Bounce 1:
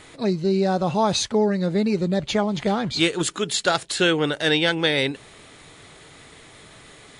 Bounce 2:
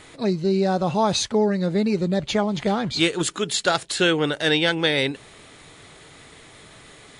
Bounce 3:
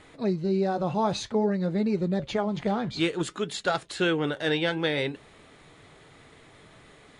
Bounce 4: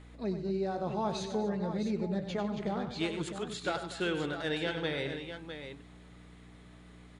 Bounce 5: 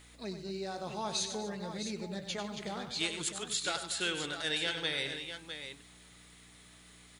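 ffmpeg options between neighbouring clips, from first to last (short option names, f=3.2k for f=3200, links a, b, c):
-af anull
-af "highshelf=f=3.4k:g=-10,flanger=delay=3.6:depth=5.4:regen=-76:speed=0.56:shape=triangular"
-filter_complex "[0:a]aeval=exprs='val(0)+0.00708*(sin(2*PI*60*n/s)+sin(2*PI*2*60*n/s)/2+sin(2*PI*3*60*n/s)/3+sin(2*PI*4*60*n/s)/4+sin(2*PI*5*60*n/s)/5)':c=same,asplit=2[a][b];[b]aecho=0:1:96|145|240|656:0.355|0.126|0.15|0.355[c];[a][c]amix=inputs=2:normalize=0,volume=-8dB"
-af "crystalizer=i=10:c=0,volume=-8dB"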